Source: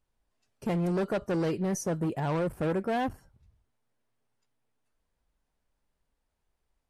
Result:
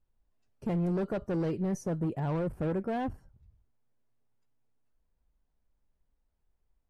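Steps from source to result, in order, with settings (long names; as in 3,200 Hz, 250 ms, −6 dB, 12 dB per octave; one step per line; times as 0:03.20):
spectral tilt −2 dB per octave
level −5.5 dB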